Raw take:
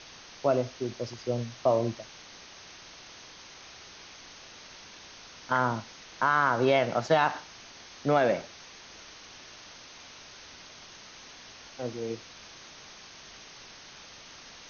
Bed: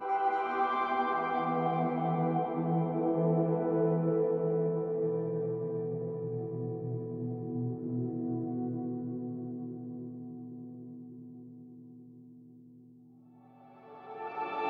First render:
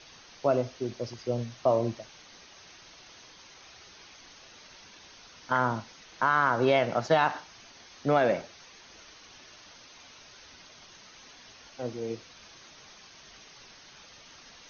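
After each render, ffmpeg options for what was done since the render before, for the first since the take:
-af "afftdn=nr=6:nf=-49"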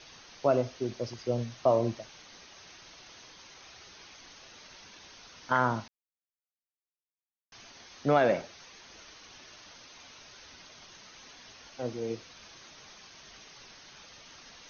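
-filter_complex "[0:a]asplit=3[s0][s1][s2];[s0]atrim=end=5.88,asetpts=PTS-STARTPTS,afade=t=out:st=5.876:d=0.004:c=hsin[s3];[s1]atrim=start=5.88:end=7.52,asetpts=PTS-STARTPTS,volume=0[s4];[s2]atrim=start=7.52,asetpts=PTS-STARTPTS,afade=t=in:d=0.004:c=hsin[s5];[s3][s4][s5]concat=n=3:v=0:a=1"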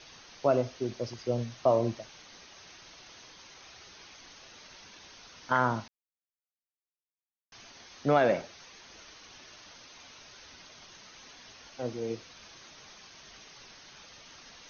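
-af anull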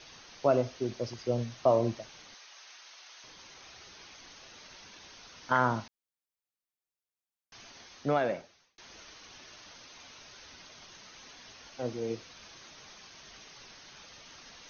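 -filter_complex "[0:a]asettb=1/sr,asplit=3[s0][s1][s2];[s0]atrim=end=2.344[s3];[s1]atrim=start=2.34:end=3.24,asetpts=PTS-STARTPTS,afade=t=in:d=0.004:c=qsin,afade=t=out:st=0.896:d=0.004:c=qsin,highpass=810[s4];[s2]atrim=start=3.236[s5];[s3][s4]acrossfade=d=0.004:c1=hsin:c2=qsin[s6];[s6][s5]acrossfade=d=0.004:c1=qsin:c2=hsin,asplit=2[s7][s8];[s7]atrim=end=8.78,asetpts=PTS-STARTPTS,afade=t=out:st=7.78:d=1[s9];[s8]atrim=start=8.78,asetpts=PTS-STARTPTS,afade=t=in:d=0.004:c=hsin[s10];[s9][s10]concat=n=2:v=0:a=1"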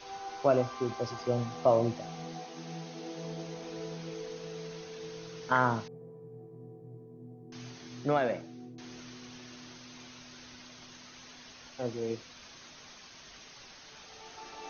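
-filter_complex "[1:a]volume=0.237[s0];[0:a][s0]amix=inputs=2:normalize=0"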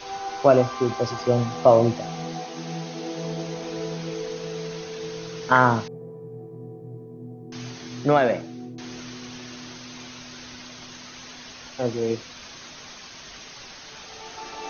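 -af "volume=2.99"

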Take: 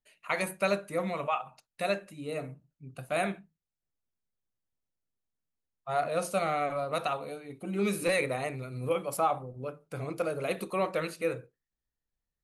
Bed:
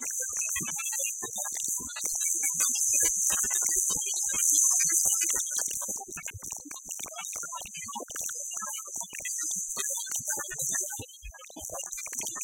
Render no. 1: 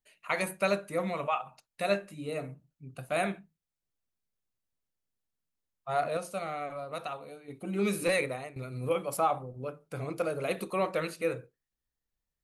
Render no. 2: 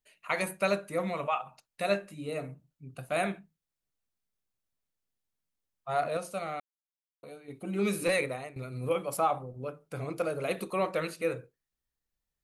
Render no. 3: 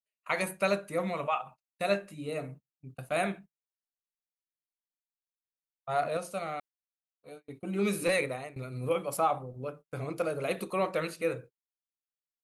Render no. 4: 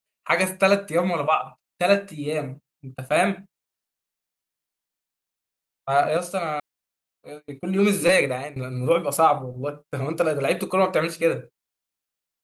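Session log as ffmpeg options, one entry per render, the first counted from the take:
-filter_complex "[0:a]asettb=1/sr,asplit=3[s0][s1][s2];[s0]atrim=end=1.894[s3];[s1]atrim=start=1.89:end=2.29,asetpts=PTS-STARTPTS,afade=t=in:d=0.004:c=qsin,afade=t=out:st=0.396:d=0.004:c=qsin,asplit=2[s4][s5];[s5]adelay=20,volume=0.473[s6];[s4][s6]amix=inputs=2:normalize=0,atrim=end_sample=17640[s7];[s2]atrim=start=2.286[s8];[s3][s7]acrossfade=d=0.004:c1=hsin:c2=qsin[s9];[s9][s8]acrossfade=d=0.004:c1=qsin:c2=hsin,asplit=4[s10][s11][s12][s13];[s10]atrim=end=6.172[s14];[s11]atrim=start=6.168:end=7.482,asetpts=PTS-STARTPTS,volume=0.473[s15];[s12]atrim=start=7.478:end=8.56,asetpts=PTS-STARTPTS,afade=t=out:st=0.682:d=0.4:silence=0.158489[s16];[s13]atrim=start=8.56,asetpts=PTS-STARTPTS,afade=t=in:d=0.004:c=hsin:silence=0.158489[s17];[s14][s15]acrossfade=d=0.004:c1=hsin:c2=hsin[s18];[s16][s17]concat=n=2:v=0:a=1[s19];[s18][s19]acrossfade=d=0.004:c1=hsin:c2=hsin"
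-filter_complex "[0:a]asplit=3[s0][s1][s2];[s0]atrim=end=6.6,asetpts=PTS-STARTPTS,afade=t=out:st=6.596:d=0.004:c=hsin[s3];[s1]atrim=start=6.6:end=7.23,asetpts=PTS-STARTPTS,volume=0[s4];[s2]atrim=start=7.23,asetpts=PTS-STARTPTS,afade=t=in:d=0.004:c=hsin[s5];[s3][s4][s5]concat=n=3:v=0:a=1"
-af "agate=range=0.0224:threshold=0.00447:ratio=16:detection=peak"
-af "volume=2.99"

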